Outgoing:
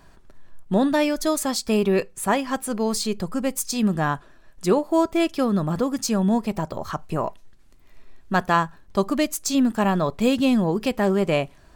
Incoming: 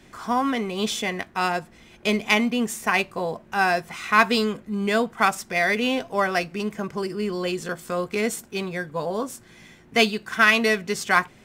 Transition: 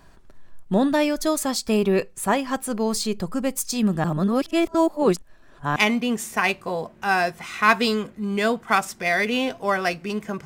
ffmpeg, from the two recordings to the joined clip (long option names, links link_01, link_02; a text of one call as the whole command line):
ffmpeg -i cue0.wav -i cue1.wav -filter_complex "[0:a]apad=whole_dur=10.45,atrim=end=10.45,asplit=2[link_01][link_02];[link_01]atrim=end=4.042[link_03];[link_02]atrim=start=4.038:end=5.762,asetpts=PTS-STARTPTS,areverse[link_04];[1:a]atrim=start=2.258:end=6.95[link_05];[link_03][link_04]acrossfade=duration=0.004:curve1=hsin:curve2=hsin[link_06];[link_06][link_05]acrossfade=duration=0.004:curve1=hsin:curve2=hsin" out.wav